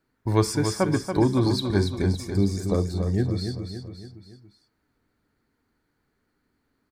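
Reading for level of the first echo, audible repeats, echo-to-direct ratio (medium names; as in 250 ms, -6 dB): -7.0 dB, 4, -6.0 dB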